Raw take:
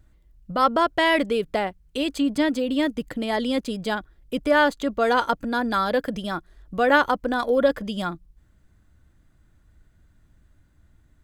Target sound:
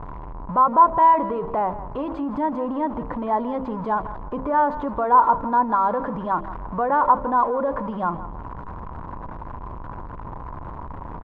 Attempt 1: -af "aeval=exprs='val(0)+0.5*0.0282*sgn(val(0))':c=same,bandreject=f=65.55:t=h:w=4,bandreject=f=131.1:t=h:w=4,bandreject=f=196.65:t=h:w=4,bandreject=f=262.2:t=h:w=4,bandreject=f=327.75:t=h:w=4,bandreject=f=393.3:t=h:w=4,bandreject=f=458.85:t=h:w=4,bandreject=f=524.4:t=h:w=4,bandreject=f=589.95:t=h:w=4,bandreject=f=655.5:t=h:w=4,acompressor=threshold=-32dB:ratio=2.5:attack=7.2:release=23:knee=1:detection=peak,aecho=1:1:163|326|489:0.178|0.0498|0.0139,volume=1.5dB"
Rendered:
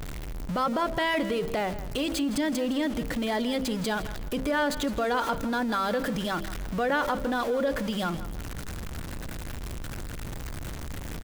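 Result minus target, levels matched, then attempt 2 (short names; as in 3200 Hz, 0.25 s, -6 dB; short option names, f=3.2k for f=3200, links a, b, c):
1000 Hz band -5.0 dB
-af "aeval=exprs='val(0)+0.5*0.0282*sgn(val(0))':c=same,bandreject=f=65.55:t=h:w=4,bandreject=f=131.1:t=h:w=4,bandreject=f=196.65:t=h:w=4,bandreject=f=262.2:t=h:w=4,bandreject=f=327.75:t=h:w=4,bandreject=f=393.3:t=h:w=4,bandreject=f=458.85:t=h:w=4,bandreject=f=524.4:t=h:w=4,bandreject=f=589.95:t=h:w=4,bandreject=f=655.5:t=h:w=4,acompressor=threshold=-32dB:ratio=2.5:attack=7.2:release=23:knee=1:detection=peak,lowpass=f=1k:t=q:w=8.4,aecho=1:1:163|326|489:0.178|0.0498|0.0139,volume=1.5dB"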